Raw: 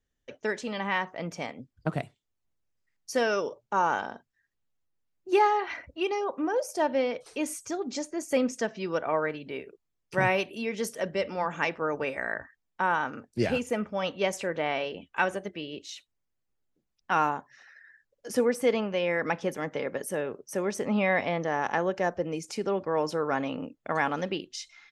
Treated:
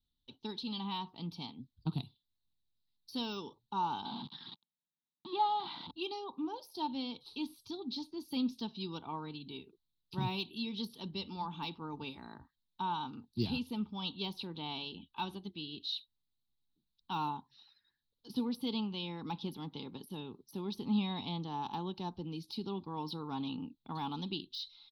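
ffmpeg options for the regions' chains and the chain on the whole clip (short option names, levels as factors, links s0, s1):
-filter_complex "[0:a]asettb=1/sr,asplit=3[s0][s1][s2];[s0]atrim=end=4.054[s3];[s1]atrim=start=4.05:end=5.91,asetpts=PTS-STARTPTS,afade=t=in:d=0.004:c=qsin,afade=t=out:st=1.856:d=0.004:c=qsin,aeval=exprs='val(0)+0.5*0.0447*sgn(val(0))':c=same,highpass=f=170:w=0.5412,highpass=f=170:w=1.3066,equalizer=f=260:t=q:w=4:g=-4,equalizer=f=390:t=q:w=4:g=-8,equalizer=f=2600:t=q:w=4:g=-10,lowpass=f=3200:w=0.5412,lowpass=f=3200:w=1.3066[s4];[s2]atrim=start=5.906[s5];[s3][s4]acrossfade=d=0.004:c1=hsin:c2=qsin[s6];[s6][s5]acrossfade=d=0.004:c1=qsin:c2=hsin,deesser=0.95,firequalizer=gain_entry='entry(240,0);entry(380,-8);entry(580,-28);entry(870,-2);entry(1800,-29);entry(2700,-5);entry(3900,14);entry(7100,-29);entry(11000,-1)':delay=0.05:min_phase=1,volume=0.668"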